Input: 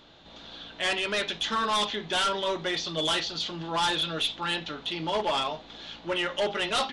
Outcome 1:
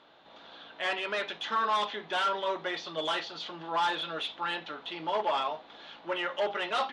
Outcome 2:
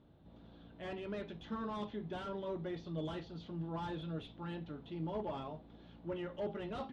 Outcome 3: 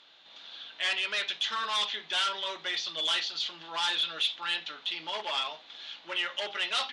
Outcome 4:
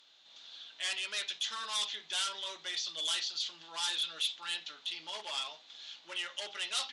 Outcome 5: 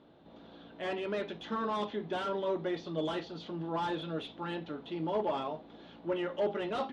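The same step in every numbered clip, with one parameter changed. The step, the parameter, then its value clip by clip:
resonant band-pass, frequency: 1,000, 100, 3,000, 7,900, 290 Hertz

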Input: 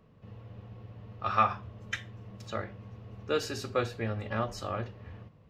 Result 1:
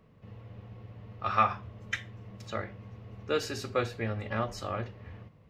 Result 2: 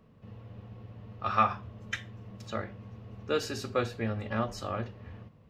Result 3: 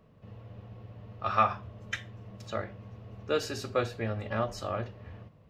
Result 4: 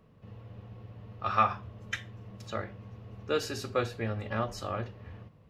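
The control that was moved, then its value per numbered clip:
parametric band, centre frequency: 2,100, 230, 630, 11,000 Hertz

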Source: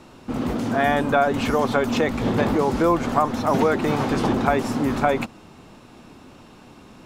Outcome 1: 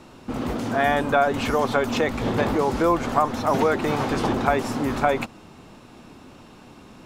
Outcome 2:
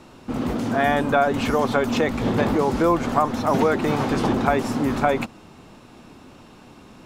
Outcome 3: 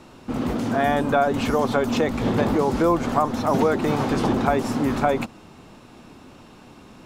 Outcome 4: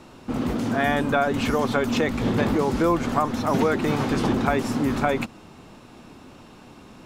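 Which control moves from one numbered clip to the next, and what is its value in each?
dynamic equaliser, frequency: 200, 8,100, 2,100, 730 Hertz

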